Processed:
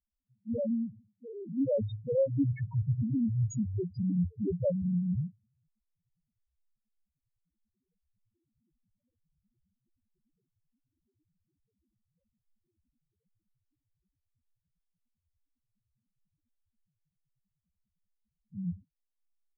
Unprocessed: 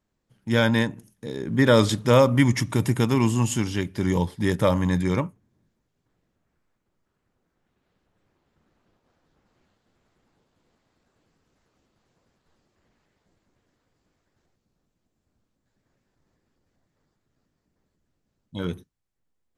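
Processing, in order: gain riding 0.5 s; loudest bins only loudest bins 1

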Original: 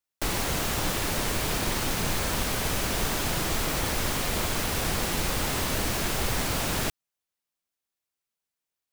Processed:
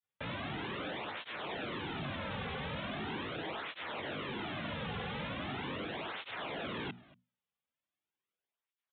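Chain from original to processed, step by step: octave divider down 2 oct, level +1 dB; high-pass 89 Hz 12 dB/octave; hum notches 60/120/180/240 Hz; granulator 100 ms, grains 20 per s, spray 12 ms, pitch spread up and down by 0 st; saturation -35.5 dBFS, distortion -7 dB; echo from a far wall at 40 m, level -21 dB; resampled via 8 kHz; cancelling through-zero flanger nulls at 0.4 Hz, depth 3.3 ms; trim +2.5 dB

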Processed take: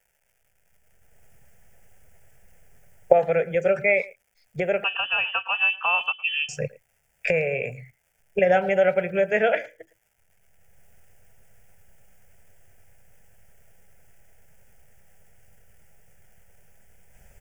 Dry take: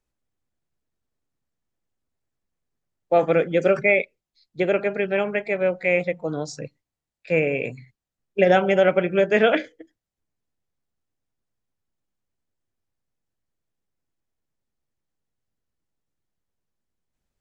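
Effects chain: recorder AGC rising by 24 dB/s; crackle 400 per s -50 dBFS; static phaser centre 1.1 kHz, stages 6; 4.84–6.49 s: frequency inversion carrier 3.2 kHz; speakerphone echo 110 ms, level -20 dB; trim -1 dB

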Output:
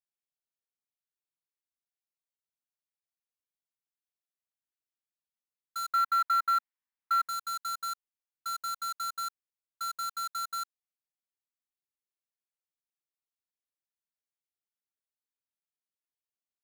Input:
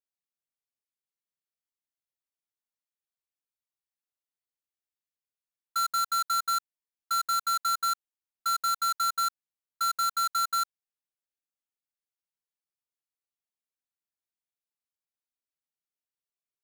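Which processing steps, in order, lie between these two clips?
5.93–7.29 s: ten-band graphic EQ 125 Hz -9 dB, 250 Hz +7 dB, 500 Hz -6 dB, 1 kHz +10 dB, 2 kHz +10 dB, 8 kHz -10 dB; trim -7.5 dB

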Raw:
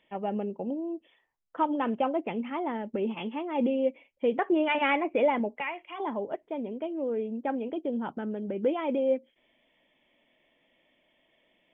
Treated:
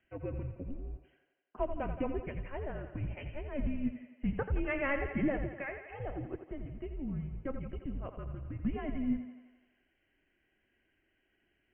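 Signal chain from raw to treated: octave divider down 2 oct, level +3 dB; mistuned SSB -280 Hz 180–3100 Hz; thinning echo 85 ms, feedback 67%, high-pass 230 Hz, level -9 dB; trim -7 dB

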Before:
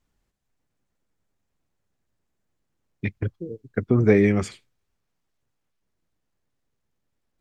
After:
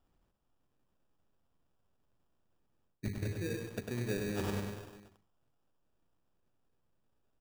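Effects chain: hum notches 50/100/150/200/250/300/350/400/450 Hz; feedback delay 227 ms, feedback 44%, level -22 dB; sample-rate reducer 2.1 kHz, jitter 0%; reverse; compression 16:1, threshold -33 dBFS, peak gain reduction 22 dB; reverse; bit-crushed delay 100 ms, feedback 55%, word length 9-bit, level -3.5 dB

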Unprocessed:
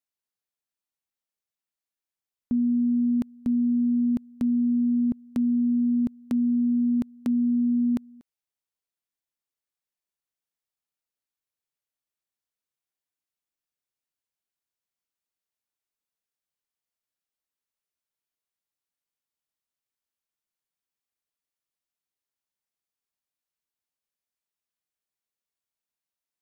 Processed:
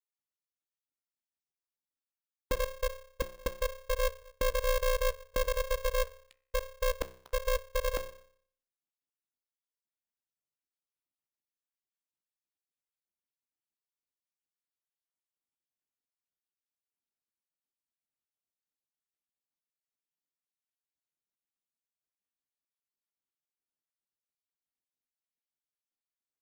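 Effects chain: random holes in the spectrogram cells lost 65%; bass shelf 180 Hz +10.5 dB; doubling 15 ms -13 dB; de-hum 63.27 Hz, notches 37; polarity switched at an audio rate 270 Hz; trim -6.5 dB

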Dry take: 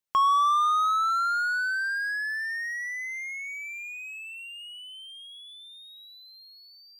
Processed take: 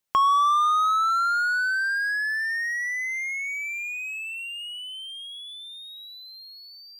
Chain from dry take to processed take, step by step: 0.88–2.75 s: peaking EQ 100 Hz +6.5 dB 1.4 oct; in parallel at +1 dB: compression, threshold -34 dBFS, peak gain reduction 13.5 dB

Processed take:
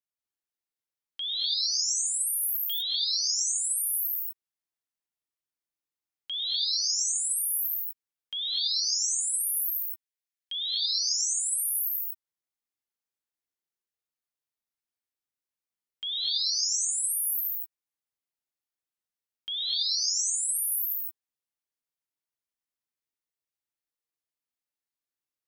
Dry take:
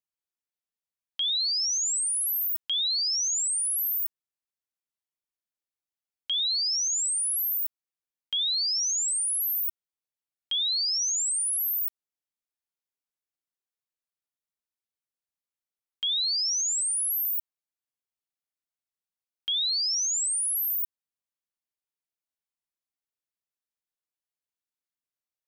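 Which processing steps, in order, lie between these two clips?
9.63–10.55 s: steep high-pass 1.5 kHz 72 dB/octave; gated-style reverb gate 270 ms rising, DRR -3.5 dB; trim -6 dB

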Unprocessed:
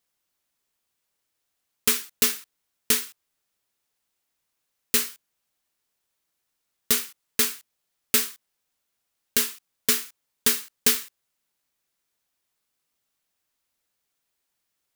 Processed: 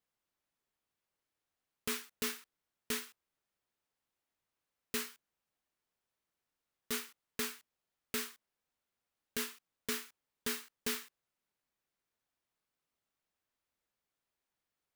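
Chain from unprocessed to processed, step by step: treble shelf 3.2 kHz -10.5 dB; peak limiter -18.5 dBFS, peak gain reduction 7.5 dB; trim -4.5 dB

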